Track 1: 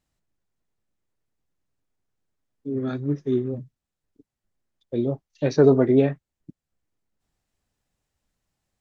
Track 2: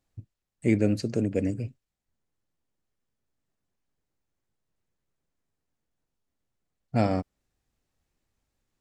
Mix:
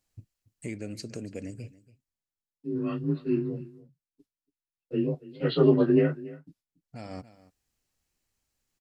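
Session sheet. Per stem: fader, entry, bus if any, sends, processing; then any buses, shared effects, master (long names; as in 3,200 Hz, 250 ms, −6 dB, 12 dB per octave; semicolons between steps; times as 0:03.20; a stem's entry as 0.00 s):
−2.5 dB, 0.00 s, no send, echo send −19 dB, partials spread apart or drawn together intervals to 89%; downward expander −55 dBFS
−4.5 dB, 0.00 s, no send, echo send −19.5 dB, notch filter 3,600 Hz, Q 16; downward compressor 3 to 1, threshold −32 dBFS, peak gain reduction 11.5 dB; automatic ducking −22 dB, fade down 0.95 s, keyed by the first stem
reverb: not used
echo: single-tap delay 283 ms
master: high-shelf EQ 2,200 Hz +10.5 dB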